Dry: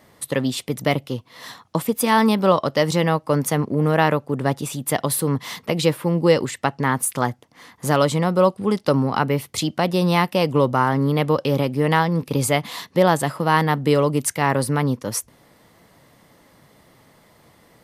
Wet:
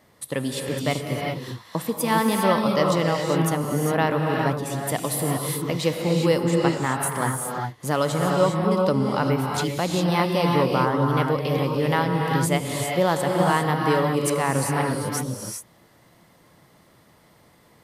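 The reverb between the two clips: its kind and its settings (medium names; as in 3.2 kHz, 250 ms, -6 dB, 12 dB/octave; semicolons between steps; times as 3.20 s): gated-style reverb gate 430 ms rising, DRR 0.5 dB; trim -5 dB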